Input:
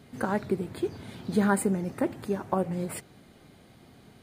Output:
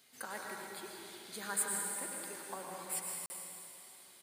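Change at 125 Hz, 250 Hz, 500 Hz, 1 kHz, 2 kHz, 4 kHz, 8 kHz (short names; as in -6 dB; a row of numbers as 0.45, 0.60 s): -25.5, -24.0, -17.5, -11.0, -6.5, 0.0, +4.5 dB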